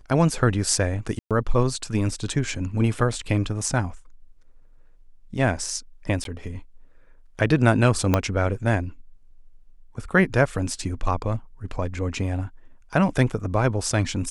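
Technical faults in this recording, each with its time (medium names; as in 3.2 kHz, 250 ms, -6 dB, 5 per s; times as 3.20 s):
1.19–1.31 s: dropout 117 ms
6.24–6.25 s: dropout 12 ms
8.14 s: pop -6 dBFS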